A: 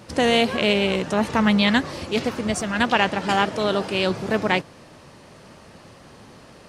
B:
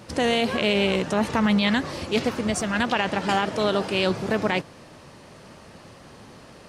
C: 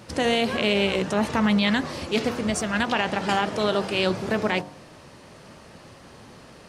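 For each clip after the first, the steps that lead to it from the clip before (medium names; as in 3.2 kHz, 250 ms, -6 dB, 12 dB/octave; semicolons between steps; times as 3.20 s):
peak limiter -12 dBFS, peak gain reduction 7.5 dB
de-hum 48.39 Hz, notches 25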